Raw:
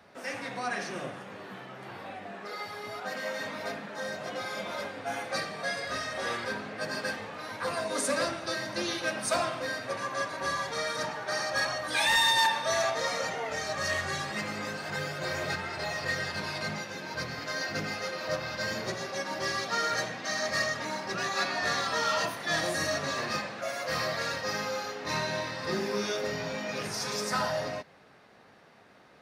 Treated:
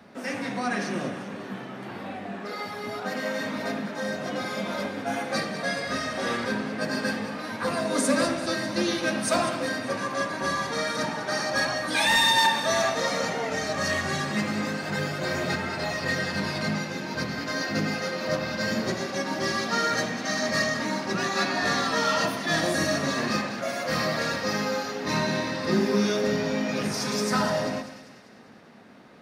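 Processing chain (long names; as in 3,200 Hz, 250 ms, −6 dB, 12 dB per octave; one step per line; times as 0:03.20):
parametric band 230 Hz +11 dB 1 octave
on a send: echo with a time of its own for lows and highs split 1,700 Hz, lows 103 ms, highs 197 ms, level −11.5 dB
on the sum: level +3 dB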